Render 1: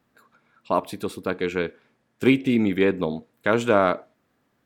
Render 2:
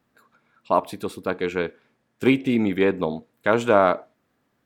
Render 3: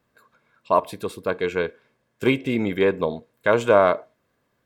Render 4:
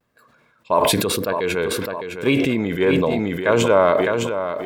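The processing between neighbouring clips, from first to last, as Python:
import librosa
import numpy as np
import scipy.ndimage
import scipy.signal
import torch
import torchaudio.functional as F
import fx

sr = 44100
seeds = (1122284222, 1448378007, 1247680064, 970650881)

y1 = fx.dynamic_eq(x, sr, hz=820.0, q=1.1, threshold_db=-33.0, ratio=4.0, max_db=5)
y1 = F.gain(torch.from_numpy(y1), -1.0).numpy()
y2 = y1 + 0.37 * np.pad(y1, (int(1.9 * sr / 1000.0), 0))[:len(y1)]
y3 = fx.vibrato(y2, sr, rate_hz=0.99, depth_cents=61.0)
y3 = fx.echo_feedback(y3, sr, ms=609, feedback_pct=30, wet_db=-9.5)
y3 = fx.sustainer(y3, sr, db_per_s=20.0)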